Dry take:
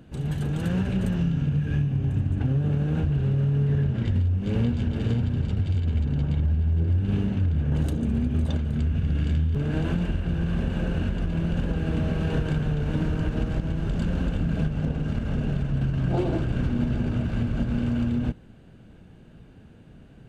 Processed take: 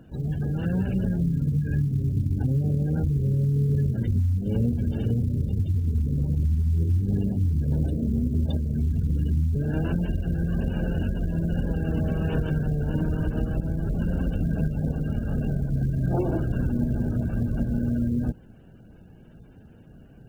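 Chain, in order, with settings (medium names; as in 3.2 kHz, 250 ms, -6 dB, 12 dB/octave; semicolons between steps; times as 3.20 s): spectral gate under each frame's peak -30 dB strong; 16.84–17.88 s: treble shelf 2.7 kHz -7 dB; companded quantiser 8-bit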